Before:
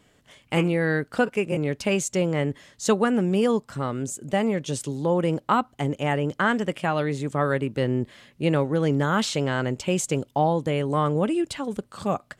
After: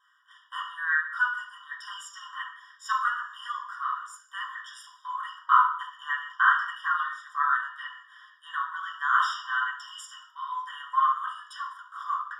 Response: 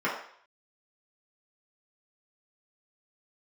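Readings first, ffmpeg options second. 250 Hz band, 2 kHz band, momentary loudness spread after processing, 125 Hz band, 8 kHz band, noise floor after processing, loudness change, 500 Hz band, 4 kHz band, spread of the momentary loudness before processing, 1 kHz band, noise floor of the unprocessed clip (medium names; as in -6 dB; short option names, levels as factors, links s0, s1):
under -40 dB, +3.0 dB, 18 LU, under -40 dB, under -15 dB, -59 dBFS, -3.5 dB, under -40 dB, -5.0 dB, 7 LU, +2.0 dB, -61 dBFS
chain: -filter_complex "[1:a]atrim=start_sample=2205,afade=t=out:st=0.35:d=0.01,atrim=end_sample=15876[s0];[0:a][s0]afir=irnorm=-1:irlink=0,afftfilt=real='re*eq(mod(floor(b*sr/1024/960),2),1)':imag='im*eq(mod(floor(b*sr/1024/960),2),1)':win_size=1024:overlap=0.75,volume=0.376"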